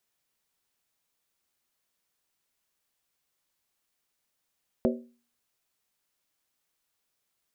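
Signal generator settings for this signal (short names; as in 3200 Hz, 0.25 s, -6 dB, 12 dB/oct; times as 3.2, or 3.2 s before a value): skin hit, lowest mode 239 Hz, decay 0.40 s, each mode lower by 2 dB, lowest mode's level -21 dB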